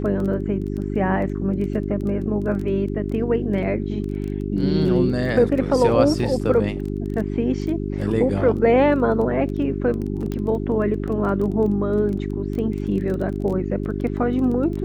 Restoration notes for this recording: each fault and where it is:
crackle 14 per s -28 dBFS
hum 50 Hz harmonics 8 -26 dBFS
10.32 s: pop -16 dBFS

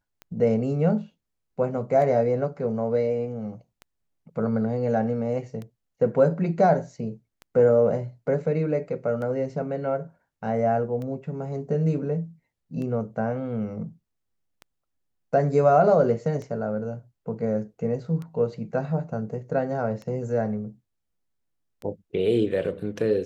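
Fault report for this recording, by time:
tick 33 1/3 rpm -25 dBFS

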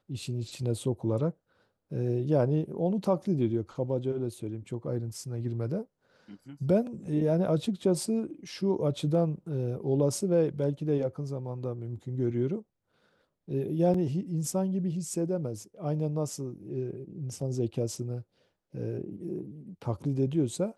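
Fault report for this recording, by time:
13.94 s: dropout 4 ms

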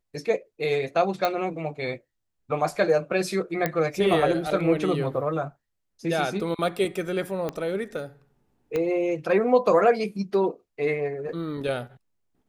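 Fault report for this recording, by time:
1.25 s: pop -11 dBFS
3.66 s: pop -10 dBFS
7.49 s: pop -16 dBFS
8.76 s: pop -15 dBFS

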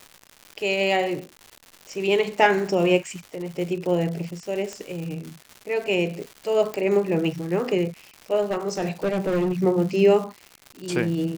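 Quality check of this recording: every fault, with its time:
crackle 240 per s -32 dBFS
4.73 s: pop -19 dBFS
6.74 s: pop -14 dBFS
8.41–9.53 s: clipped -19.5 dBFS

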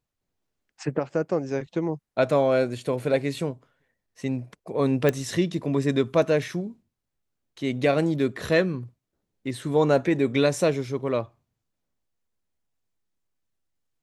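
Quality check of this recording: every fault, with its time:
5.09 s: pop -10 dBFS

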